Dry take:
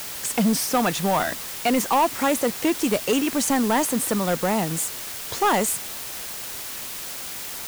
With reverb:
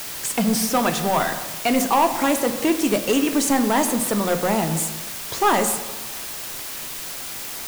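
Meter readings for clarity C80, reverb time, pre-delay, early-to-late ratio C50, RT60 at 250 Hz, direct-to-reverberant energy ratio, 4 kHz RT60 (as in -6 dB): 12.0 dB, 1.1 s, 3 ms, 10.5 dB, 1.2 s, 6.5 dB, 0.65 s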